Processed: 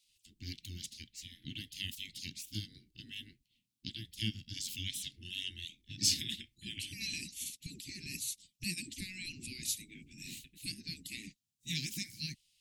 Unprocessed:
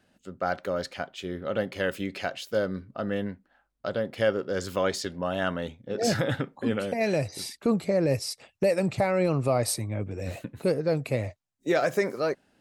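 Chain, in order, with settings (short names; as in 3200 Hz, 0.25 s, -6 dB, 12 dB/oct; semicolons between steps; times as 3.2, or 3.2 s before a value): spectral gate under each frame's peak -15 dB weak; inverse Chebyshev band-stop 550–1300 Hz, stop band 60 dB; gain +4 dB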